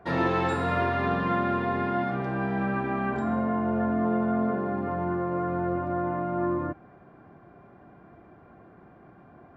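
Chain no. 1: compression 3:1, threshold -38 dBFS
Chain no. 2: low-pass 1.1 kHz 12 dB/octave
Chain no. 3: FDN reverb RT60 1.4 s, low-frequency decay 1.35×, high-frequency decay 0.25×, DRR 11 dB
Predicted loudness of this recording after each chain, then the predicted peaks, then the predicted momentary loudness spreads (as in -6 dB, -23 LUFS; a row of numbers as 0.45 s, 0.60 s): -38.0 LUFS, -28.5 LUFS, -27.5 LUFS; -24.5 dBFS, -14.0 dBFS, -12.0 dBFS; 16 LU, 4 LU, 6 LU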